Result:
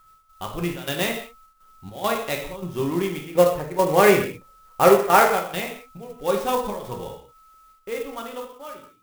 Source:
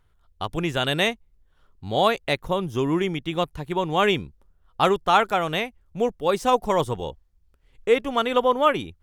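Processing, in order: fade out at the end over 2.38 s; 3.25–5.27 s: ten-band graphic EQ 125 Hz +5 dB, 500 Hz +11 dB, 2 kHz +11 dB, 4 kHz -10 dB; whistle 1.3 kHz -49 dBFS; trance gate "x.xxx.xxxx.x" 103 bpm -12 dB; gated-style reverb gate 230 ms falling, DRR 0.5 dB; sampling jitter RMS 0.032 ms; trim -4.5 dB

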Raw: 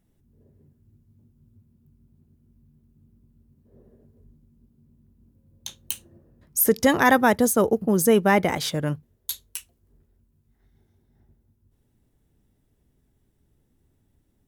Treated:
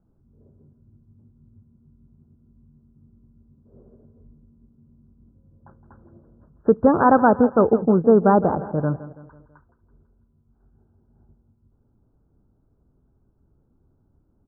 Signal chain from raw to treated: steep low-pass 1.5 kHz 96 dB/octave; on a send: feedback delay 165 ms, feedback 48%, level -15 dB; on the sum: trim +3.5 dB

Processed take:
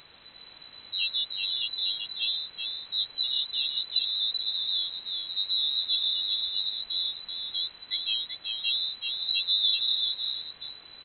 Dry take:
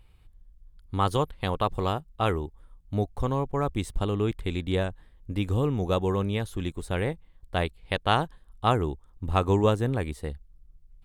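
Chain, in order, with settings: treble shelf 2.7 kHz +6.5 dB; loudest bins only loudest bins 8; in parallel at -8 dB: word length cut 6-bit, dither triangular; on the sum: delay 384 ms -4.5 dB; frequency inversion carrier 4 kHz; trim -6 dB

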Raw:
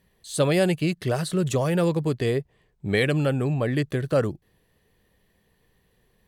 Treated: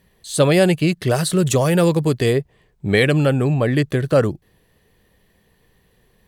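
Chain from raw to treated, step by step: 1.10–2.33 s: treble shelf 5.1 kHz +6.5 dB; trim +6.5 dB

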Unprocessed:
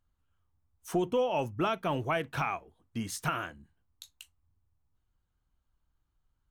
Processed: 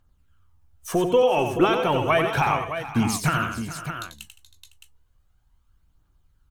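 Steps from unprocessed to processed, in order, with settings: phaser 0.33 Hz, delay 2.9 ms, feedback 46%; on a send: multi-tap echo 91/165/427/507/615 ms -7/-17.5/-14.5/-19/-9.5 dB; on the sum: trim +8 dB

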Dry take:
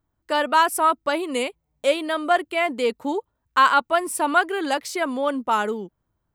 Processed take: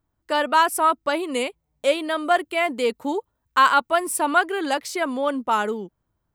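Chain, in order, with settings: 2.18–4.18 s: treble shelf 8.8 kHz +5 dB

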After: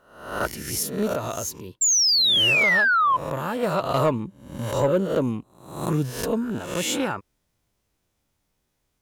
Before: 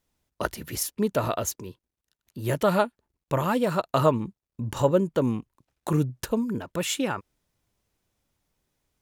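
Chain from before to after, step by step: reverse spectral sustain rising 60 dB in 0.64 s; 1.13–3.63 s: compression 2:1, threshold -28 dBFS, peak gain reduction 7.5 dB; 1.81–3.17 s: painted sound fall 1–7.5 kHz -18 dBFS; saturation -11.5 dBFS, distortion -22 dB

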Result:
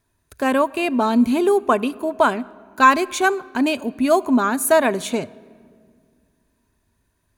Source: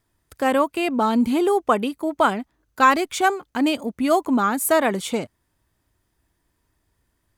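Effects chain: rippled EQ curve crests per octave 1.5, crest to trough 6 dB; on a send: reverberation RT60 2.0 s, pre-delay 24 ms, DRR 21 dB; on the sum: trim +1 dB

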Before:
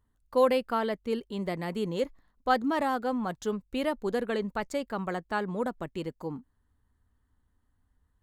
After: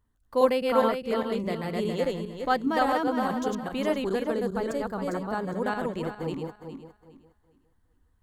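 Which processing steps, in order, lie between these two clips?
backward echo that repeats 205 ms, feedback 49%, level -1 dB; 4.27–5.64 s: peaking EQ 2.6 kHz -9 dB 1.4 oct

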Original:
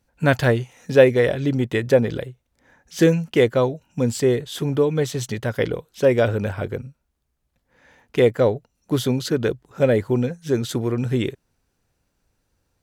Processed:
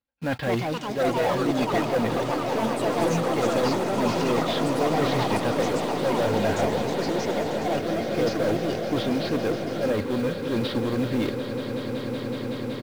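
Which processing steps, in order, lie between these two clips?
CVSD coder 32 kbps; steep low-pass 4.6 kHz; gate with hold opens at -40 dBFS; high-pass 96 Hz 6 dB/octave; comb 3.7 ms, depth 41%; reverse; compression 5:1, threshold -24 dBFS, peak gain reduction 16 dB; reverse; saturation -25 dBFS, distortion -12 dB; in parallel at -5.5 dB: companded quantiser 4-bit; on the sum: echo with a slow build-up 187 ms, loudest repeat 8, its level -13 dB; ever faster or slower copies 295 ms, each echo +5 st, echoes 3

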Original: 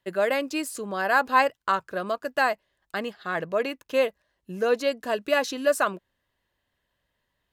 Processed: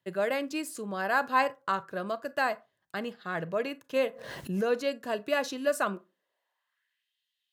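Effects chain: high-pass sweep 130 Hz -> 3.2 kHz, 5.72–7.13 s; on a send at -17 dB: reverberation RT60 0.30 s, pre-delay 27 ms; 3.96–4.66 s: on the sum: swell ahead of each attack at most 45 dB/s; trim -5.5 dB

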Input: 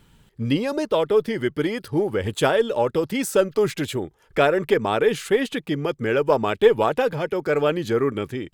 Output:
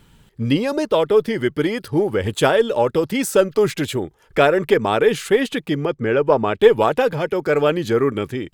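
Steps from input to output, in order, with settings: 5.85–6.60 s: low-pass 2.2 kHz 6 dB/octave; trim +3.5 dB

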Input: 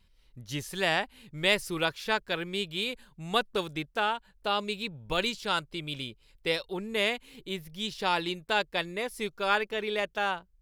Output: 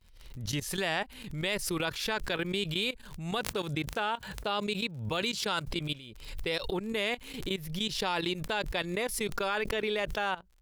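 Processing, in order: 3.38–5.68 s: high-pass 60 Hz 24 dB/octave; gate with hold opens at -57 dBFS; bass shelf 150 Hz +2.5 dB; level held to a coarse grid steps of 17 dB; crackle 42 per s -56 dBFS; swell ahead of each attack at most 60 dB/s; trim +3.5 dB

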